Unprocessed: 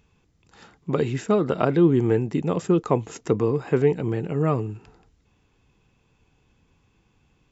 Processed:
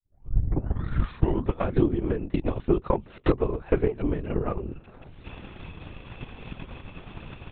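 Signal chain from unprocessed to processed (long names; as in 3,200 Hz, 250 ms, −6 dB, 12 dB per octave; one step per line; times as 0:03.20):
turntable start at the beginning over 1.70 s
camcorder AGC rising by 39 dB per second
mains-hum notches 50/100/150/200 Hz
linear-prediction vocoder at 8 kHz whisper
transient designer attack +8 dB, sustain −5 dB
level −8 dB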